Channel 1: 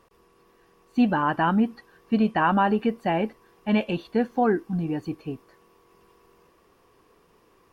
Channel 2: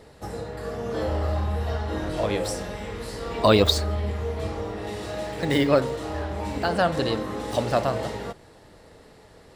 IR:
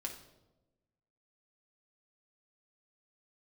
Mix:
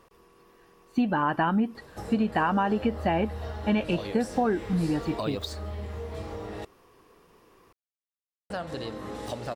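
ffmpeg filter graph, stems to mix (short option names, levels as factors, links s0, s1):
-filter_complex "[0:a]volume=1.26[s0];[1:a]acompressor=threshold=0.0251:ratio=3,adelay=1750,volume=0.794,asplit=3[s1][s2][s3];[s1]atrim=end=6.65,asetpts=PTS-STARTPTS,afade=t=out:st=6.646:d=0.004:c=hsin[s4];[s2]atrim=start=6.65:end=8.5,asetpts=PTS-STARTPTS,volume=0[s5];[s3]atrim=start=8.5,asetpts=PTS-STARTPTS,afade=t=in:d=0.004:c=hsin[s6];[s4][s5][s6]concat=n=3:v=0:a=1[s7];[s0][s7]amix=inputs=2:normalize=0,acompressor=threshold=0.0891:ratio=6"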